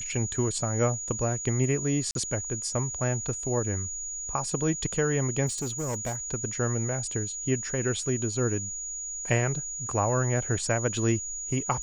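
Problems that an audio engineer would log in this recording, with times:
whistle 6,800 Hz −33 dBFS
0:02.11–0:02.15: drop-out 42 ms
0:05.46–0:06.16: clipping −27 dBFS

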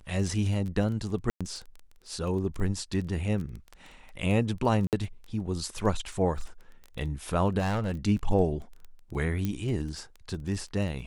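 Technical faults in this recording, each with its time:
surface crackle 13 per second −35 dBFS
0:01.30–0:01.41: drop-out 106 ms
0:04.87–0:04.93: drop-out 58 ms
0:07.58–0:07.94: clipping −24.5 dBFS
0:09.45: click −17 dBFS

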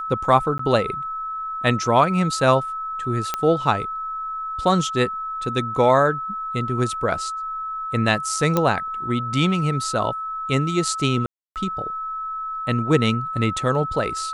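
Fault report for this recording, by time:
whistle 1,300 Hz −26 dBFS
0:00.58–0:00.59: drop-out 14 ms
0:03.34: click −8 dBFS
0:08.57: click −6 dBFS
0:11.26–0:11.56: drop-out 298 ms

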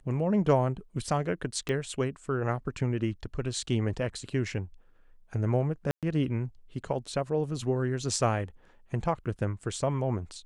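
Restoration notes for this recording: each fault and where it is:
0:01.69: click −19 dBFS
0:05.91–0:06.03: drop-out 117 ms

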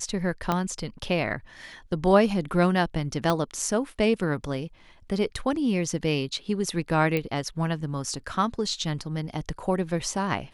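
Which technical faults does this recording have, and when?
0:00.52: click −11 dBFS
0:03.30: click −11 dBFS
0:07.17: click −14 dBFS

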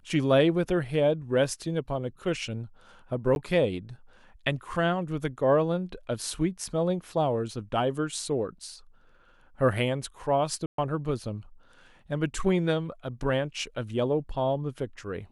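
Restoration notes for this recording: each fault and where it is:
0:03.35–0:03.36: drop-out 11 ms
0:10.66–0:10.78: drop-out 123 ms

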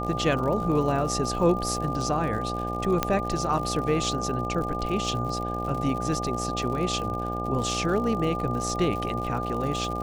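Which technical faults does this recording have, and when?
mains buzz 60 Hz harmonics 14 −32 dBFS
surface crackle 93 per second −33 dBFS
whistle 1,200 Hz −31 dBFS
0:03.03: click −8 dBFS

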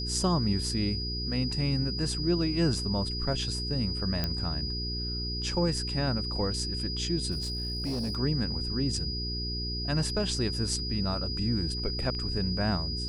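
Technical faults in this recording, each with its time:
mains hum 60 Hz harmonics 7 −35 dBFS
whistle 4,900 Hz −34 dBFS
0:04.24: click −15 dBFS
0:07.31–0:08.17: clipping −28 dBFS

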